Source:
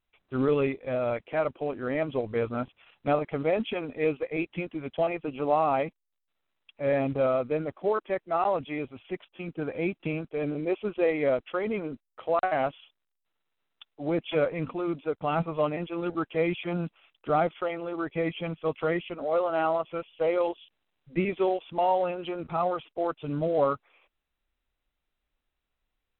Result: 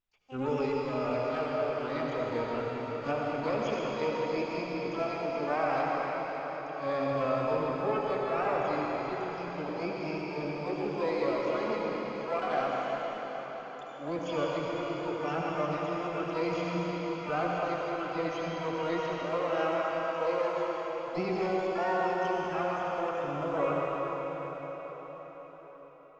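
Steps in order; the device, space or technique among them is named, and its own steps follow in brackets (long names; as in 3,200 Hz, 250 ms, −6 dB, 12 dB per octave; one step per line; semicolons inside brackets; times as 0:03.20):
0:07.23–0:09.14: low-shelf EQ 210 Hz +6 dB
shimmer-style reverb (pitch-shifted copies added +12 semitones −8 dB; convolution reverb RT60 5.8 s, pre-delay 68 ms, DRR −4 dB)
level −8.5 dB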